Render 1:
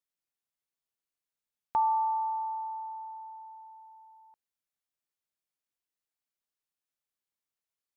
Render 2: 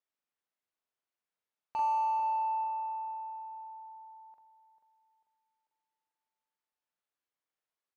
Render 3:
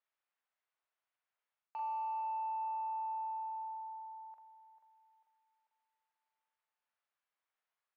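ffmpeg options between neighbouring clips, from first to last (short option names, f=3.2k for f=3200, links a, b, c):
-filter_complex "[0:a]asplit=2[a][b];[b]highpass=f=720:p=1,volume=18dB,asoftclip=type=tanh:threshold=-20dB[c];[a][c]amix=inputs=2:normalize=0,lowpass=f=1.1k:p=1,volume=-6dB,asplit=2[d][e];[e]adelay=42,volume=-2.5dB[f];[d][f]amix=inputs=2:normalize=0,asplit=2[g][h];[h]adelay=443,lowpass=f=850:p=1,volume=-8dB,asplit=2[i][j];[j]adelay=443,lowpass=f=850:p=1,volume=0.52,asplit=2[k][l];[l]adelay=443,lowpass=f=850:p=1,volume=0.52,asplit=2[m][n];[n]adelay=443,lowpass=f=850:p=1,volume=0.52,asplit=2[o][p];[p]adelay=443,lowpass=f=850:p=1,volume=0.52,asplit=2[q][r];[r]adelay=443,lowpass=f=850:p=1,volume=0.52[s];[i][k][m][o][q][s]amix=inputs=6:normalize=0[t];[g][t]amix=inputs=2:normalize=0,volume=-7dB"
-af "areverse,acompressor=threshold=-40dB:ratio=8,areverse,highpass=700,lowpass=2.7k,volume=4.5dB"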